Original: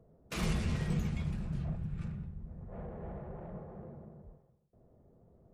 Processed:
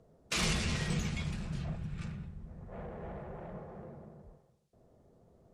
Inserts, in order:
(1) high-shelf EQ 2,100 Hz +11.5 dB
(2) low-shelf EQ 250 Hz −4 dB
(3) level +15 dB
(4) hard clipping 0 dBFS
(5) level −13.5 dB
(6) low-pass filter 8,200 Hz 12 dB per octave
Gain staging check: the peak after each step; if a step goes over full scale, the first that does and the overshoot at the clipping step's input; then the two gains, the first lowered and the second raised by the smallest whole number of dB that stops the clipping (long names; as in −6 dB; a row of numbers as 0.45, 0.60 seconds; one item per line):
−18.0, −20.0, −5.0, −5.0, −18.5, −19.0 dBFS
no step passes full scale